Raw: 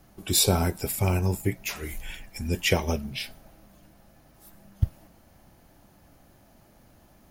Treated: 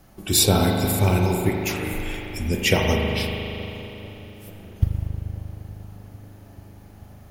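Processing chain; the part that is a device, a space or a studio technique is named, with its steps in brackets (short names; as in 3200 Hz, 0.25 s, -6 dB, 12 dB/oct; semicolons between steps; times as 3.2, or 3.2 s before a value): 1.49–1.92 HPF 85 Hz 24 dB/oct; dub delay into a spring reverb (darkening echo 0.439 s, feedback 81%, low-pass 1100 Hz, level -20 dB; spring tank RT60 3.3 s, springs 39 ms, chirp 50 ms, DRR 0.5 dB); gain +3.5 dB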